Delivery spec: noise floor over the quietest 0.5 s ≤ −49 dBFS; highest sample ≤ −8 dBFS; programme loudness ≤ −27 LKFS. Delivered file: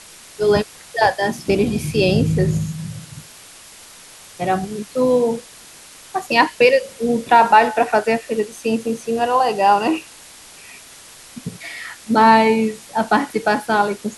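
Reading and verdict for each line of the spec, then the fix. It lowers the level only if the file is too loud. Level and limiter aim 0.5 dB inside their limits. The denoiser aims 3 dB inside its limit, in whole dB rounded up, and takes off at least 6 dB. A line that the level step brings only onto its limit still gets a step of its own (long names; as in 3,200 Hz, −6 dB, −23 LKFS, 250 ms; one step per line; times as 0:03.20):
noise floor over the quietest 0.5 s −42 dBFS: out of spec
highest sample −1.5 dBFS: out of spec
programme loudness −17.5 LKFS: out of spec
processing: level −10 dB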